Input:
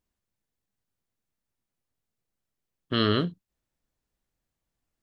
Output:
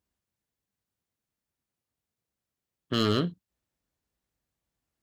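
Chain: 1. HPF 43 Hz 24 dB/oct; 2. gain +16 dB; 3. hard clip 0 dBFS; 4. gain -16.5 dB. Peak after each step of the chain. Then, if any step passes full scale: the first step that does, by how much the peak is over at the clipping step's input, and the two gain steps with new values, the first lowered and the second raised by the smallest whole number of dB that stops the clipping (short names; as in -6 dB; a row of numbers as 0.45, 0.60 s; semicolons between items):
-10.5, +5.5, 0.0, -16.5 dBFS; step 2, 5.5 dB; step 2 +10 dB, step 4 -10.5 dB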